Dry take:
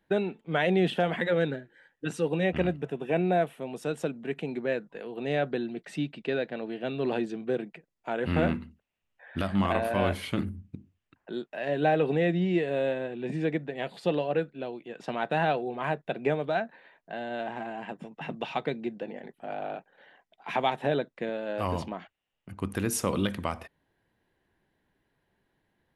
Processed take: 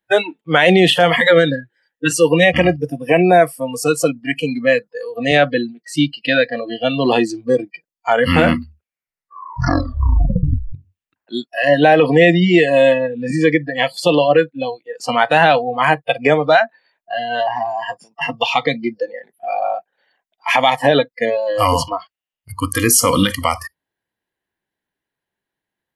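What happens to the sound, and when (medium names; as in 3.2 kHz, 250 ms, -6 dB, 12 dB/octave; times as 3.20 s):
5.31–5.97 s: three bands expanded up and down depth 70%
8.61 s: tape stop 2.12 s
whole clip: spectral noise reduction 27 dB; tilt EQ +2 dB/octave; loudness maximiser +20 dB; trim -1 dB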